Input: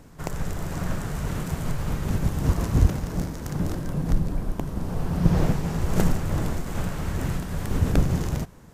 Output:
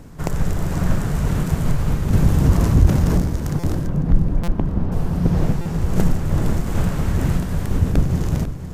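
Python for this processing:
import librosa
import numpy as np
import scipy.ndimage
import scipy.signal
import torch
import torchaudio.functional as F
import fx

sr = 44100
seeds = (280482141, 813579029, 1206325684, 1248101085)

y = np.minimum(x, 2.0 * 10.0 ** (-10.5 / 20.0) - x)
y = fx.air_absorb(y, sr, metres=280.0, at=(3.87, 4.92))
y = fx.echo_feedback(y, sr, ms=497, feedback_pct=47, wet_db=-16)
y = fx.rider(y, sr, range_db=3, speed_s=0.5)
y = fx.low_shelf(y, sr, hz=380.0, db=5.5)
y = fx.buffer_glitch(y, sr, at_s=(3.59, 4.43, 5.61), block=256, repeats=7)
y = fx.env_flatten(y, sr, amount_pct=50, at=(2.13, 3.18))
y = F.gain(torch.from_numpy(y), 1.0).numpy()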